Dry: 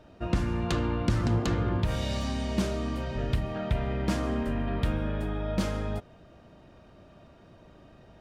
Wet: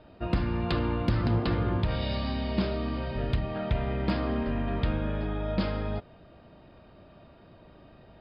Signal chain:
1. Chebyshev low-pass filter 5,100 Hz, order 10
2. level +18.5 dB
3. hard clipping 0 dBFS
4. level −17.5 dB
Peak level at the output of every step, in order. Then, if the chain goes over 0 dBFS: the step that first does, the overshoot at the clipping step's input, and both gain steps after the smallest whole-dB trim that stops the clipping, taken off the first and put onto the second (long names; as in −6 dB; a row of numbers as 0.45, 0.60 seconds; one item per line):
−15.5, +3.0, 0.0, −17.5 dBFS
step 2, 3.0 dB
step 2 +15.5 dB, step 4 −14.5 dB